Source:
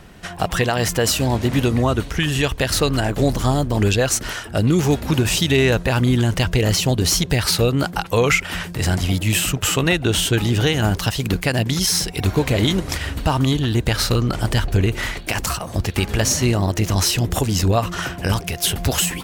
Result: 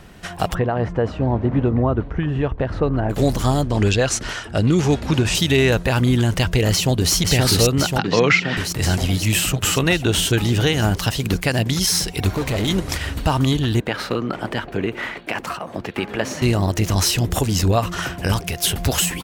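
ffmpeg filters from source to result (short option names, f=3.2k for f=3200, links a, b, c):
-filter_complex "[0:a]asplit=3[a][b][c];[a]afade=t=out:st=0.53:d=0.02[d];[b]lowpass=1.1k,afade=t=in:st=0.53:d=0.02,afade=t=out:st=3.09:d=0.02[e];[c]afade=t=in:st=3.09:d=0.02[f];[d][e][f]amix=inputs=3:normalize=0,asettb=1/sr,asplit=3[g][h][i];[g]atrim=end=3.624[j];[h]atrim=start=3.62:end=5.35,asetpts=PTS-STARTPTS,afade=t=in:d=0.004:c=qsin,afade=t=out:st=1.726:d=0.004:c=qsin,lowpass=7.5k[k];[i]atrim=start=5.346[l];[j][k]acrossfade=d=0.004:c1=hsin:c2=qsin[m];[m][l]acrossfade=d=0.004:c1=qsin:c2=hsin,asplit=2[n][o];[o]afade=t=in:st=6.71:d=0.01,afade=t=out:st=7.13:d=0.01,aecho=0:1:530|1060|1590|2120|2650|3180|3710|4240|4770|5300|5830|6360:0.841395|0.588977|0.412284|0.288599|0.202019|0.141413|0.0989893|0.0692925|0.0485048|0.0339533|0.0237673|0.0166371[p];[n][p]amix=inputs=2:normalize=0,asettb=1/sr,asplit=3[q][r][s];[q]atrim=end=7.984[t];[r]atrim=start=7.98:end=8.57,asetpts=PTS-STARTPTS,afade=t=in:d=0.004:c=qsin,afade=t=out:st=0.586:d=0.004:c=qsin,highpass=f=130:w=0.5412,highpass=f=130:w=1.3066,equalizer=f=180:t=q:w=4:g=6,equalizer=f=310:t=q:w=4:g=4,equalizer=f=1.8k:t=q:w=4:g=6,lowpass=f=5.2k:w=0.5412,lowpass=f=5.2k:w=1.3066[u];[s]atrim=start=8.566[v];[t][u]acrossfade=d=0.004:c1=hsin:c2=qsin[w];[w][v]acrossfade=d=0.004:c1=qsin:c2=hsin,asplit=3[x][y][z];[x]afade=t=out:st=12.28:d=0.02[aa];[y]asoftclip=type=hard:threshold=-18dB,afade=t=in:st=12.28:d=0.02,afade=t=out:st=12.68:d=0.02[ab];[z]afade=t=in:st=12.68:d=0.02[ac];[aa][ab][ac]amix=inputs=3:normalize=0,asettb=1/sr,asplit=3[ad][ae][af];[ad]atrim=end=13.804[ag];[ae]atrim=start=13.8:end=16.42,asetpts=PTS-STARTPTS,afade=t=in:d=0.004:c=qsin,afade=t=out:st=2.616:d=0.004:c=qsin,acrossover=split=170 3000:gain=0.0794 1 0.158[ah][ai][aj];[ah][ai][aj]amix=inputs=3:normalize=0[ak];[af]atrim=start=16.416[al];[ag][ak]acrossfade=d=0.004:c1=hsin:c2=qsin[am];[am][al]acrossfade=d=0.004:c1=qsin:c2=hsin"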